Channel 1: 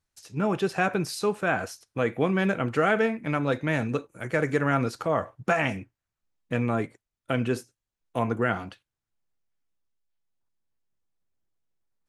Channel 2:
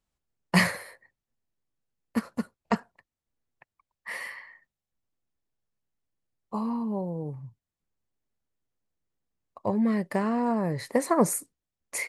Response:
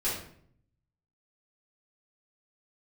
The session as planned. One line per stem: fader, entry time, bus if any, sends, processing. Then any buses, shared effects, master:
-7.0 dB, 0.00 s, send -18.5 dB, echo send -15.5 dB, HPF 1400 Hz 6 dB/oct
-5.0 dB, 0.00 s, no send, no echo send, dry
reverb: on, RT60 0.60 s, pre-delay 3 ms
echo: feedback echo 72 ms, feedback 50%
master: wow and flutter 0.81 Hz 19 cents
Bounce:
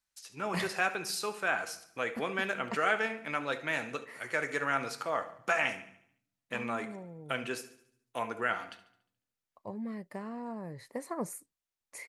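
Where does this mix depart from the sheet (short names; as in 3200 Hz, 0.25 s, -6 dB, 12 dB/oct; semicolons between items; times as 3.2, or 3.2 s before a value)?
stem 1 -7.0 dB -> -1.0 dB; stem 2 -5.0 dB -> -14.0 dB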